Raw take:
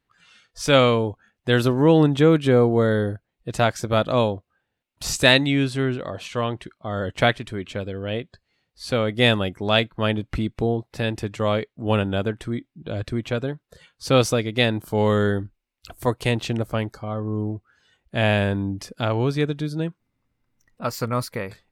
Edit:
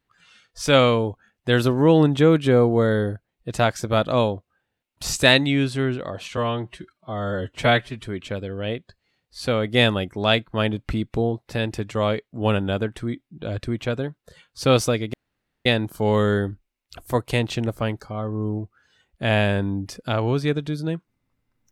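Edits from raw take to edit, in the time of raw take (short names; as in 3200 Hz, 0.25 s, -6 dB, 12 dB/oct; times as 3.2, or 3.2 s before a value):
6.37–7.48 stretch 1.5×
14.58 insert room tone 0.52 s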